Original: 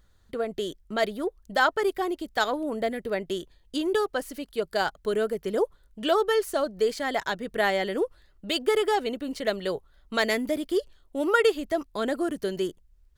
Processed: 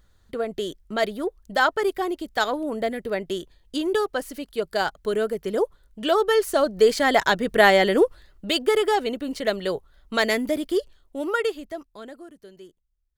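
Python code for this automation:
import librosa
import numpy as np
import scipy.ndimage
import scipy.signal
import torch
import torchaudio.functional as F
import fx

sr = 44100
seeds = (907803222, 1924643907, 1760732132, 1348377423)

y = fx.gain(x, sr, db=fx.line((6.08, 2.0), (7.02, 9.0), (7.98, 9.0), (8.68, 3.0), (10.68, 3.0), (11.62, -5.0), (12.33, -17.0)))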